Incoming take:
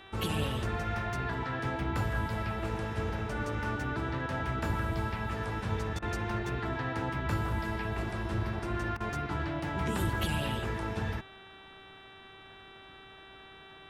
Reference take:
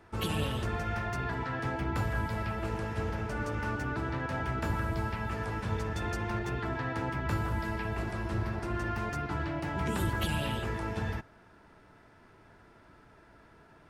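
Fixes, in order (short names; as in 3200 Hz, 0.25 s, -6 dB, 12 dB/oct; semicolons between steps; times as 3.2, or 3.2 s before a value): de-hum 386.7 Hz, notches 10; interpolate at 5.99/8.97, 32 ms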